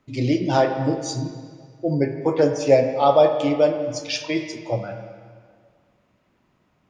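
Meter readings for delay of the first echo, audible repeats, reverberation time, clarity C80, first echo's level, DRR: no echo, no echo, 1.9 s, 8.0 dB, no echo, 6.0 dB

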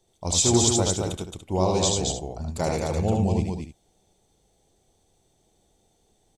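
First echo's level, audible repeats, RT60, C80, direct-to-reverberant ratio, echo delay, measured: -3.0 dB, 3, no reverb, no reverb, no reverb, 76 ms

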